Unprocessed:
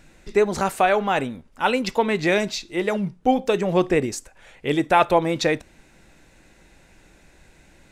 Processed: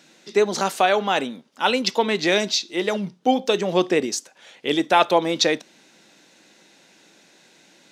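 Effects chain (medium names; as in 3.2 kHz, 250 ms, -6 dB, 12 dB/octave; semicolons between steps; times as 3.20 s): high-pass 190 Hz 24 dB/octave; high-order bell 4.4 kHz +8 dB 1.3 oct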